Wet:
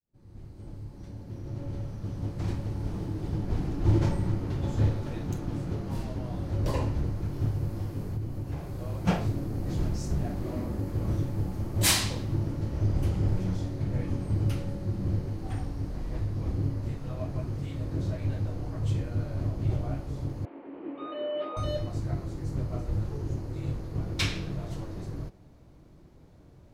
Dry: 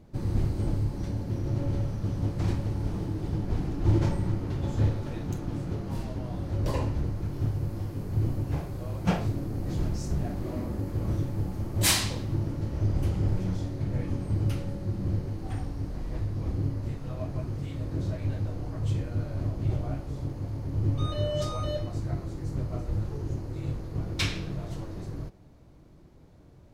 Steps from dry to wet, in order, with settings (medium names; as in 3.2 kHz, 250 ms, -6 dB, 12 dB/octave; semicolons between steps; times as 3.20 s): fade-in on the opening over 3.74 s; 8.06–8.79 s: compression 5:1, threshold -30 dBFS, peak gain reduction 8 dB; 20.45–21.57 s: elliptic band-pass 280–2700 Hz, stop band 40 dB